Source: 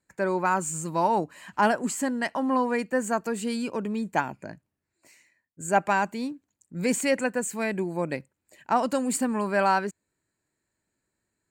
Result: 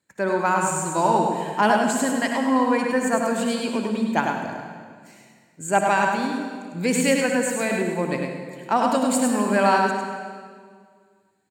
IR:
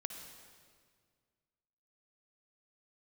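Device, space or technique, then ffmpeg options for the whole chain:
PA in a hall: -filter_complex "[0:a]highpass=100,equalizer=f=3.4k:t=o:w=0.52:g=6,aecho=1:1:102:0.562[a];[1:a]atrim=start_sample=2205[b];[a][b]afir=irnorm=-1:irlink=0,volume=5dB"

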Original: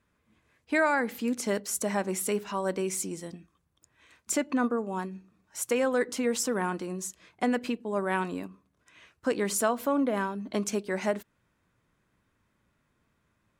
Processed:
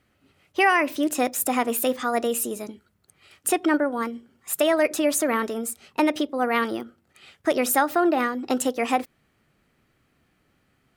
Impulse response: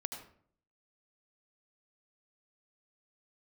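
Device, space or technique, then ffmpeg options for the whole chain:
nightcore: -af "asetrate=54684,aresample=44100,volume=6dB"

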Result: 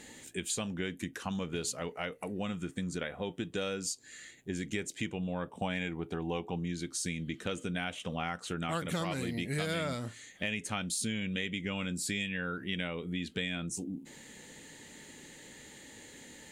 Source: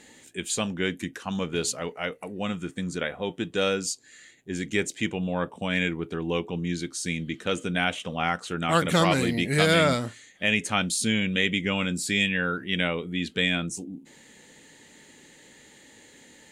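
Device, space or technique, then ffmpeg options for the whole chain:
ASMR close-microphone chain: -filter_complex "[0:a]lowshelf=f=140:g=5.5,acompressor=threshold=-34dB:ratio=4,highshelf=f=11k:g=6,asettb=1/sr,asplit=3[a][b][c];[a]atrim=end=5.584[d];[b]atrim=start=5.58:end=6.65,asetpts=PTS-STARTPTS,afade=t=in:d=0.004:c=qsin,afade=t=out:st=1.066:d=0.004:c=qsin,equalizer=f=780:w=3.1:g=9.5[e];[c]atrim=start=6.646[f];[d][e]acrossfade=d=0.004:c1=hsin:c2=qsin[g];[g][f]acrossfade=d=0.004:c1=qsin:c2=hsin"

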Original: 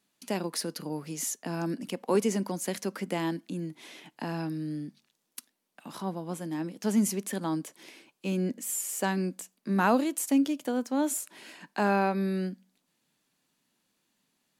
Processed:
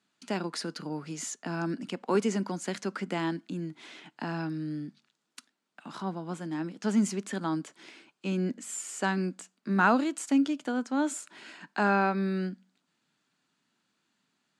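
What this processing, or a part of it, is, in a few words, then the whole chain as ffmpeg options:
car door speaker: -af "highpass=88,equalizer=f=520:t=q:w=4:g=-5,equalizer=f=1.4k:t=q:w=4:g=7,equalizer=f=5.8k:t=q:w=4:g=-4,lowpass=f=7.7k:w=0.5412,lowpass=f=7.7k:w=1.3066"

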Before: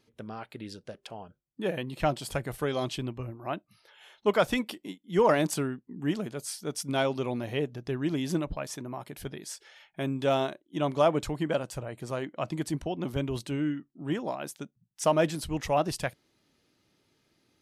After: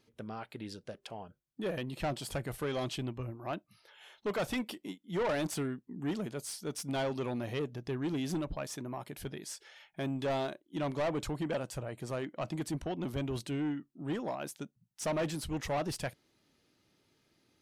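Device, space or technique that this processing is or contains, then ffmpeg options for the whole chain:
saturation between pre-emphasis and de-emphasis: -af "highshelf=f=7k:g=12,asoftclip=type=tanh:threshold=-27dB,highshelf=f=7k:g=-12,volume=-1.5dB"

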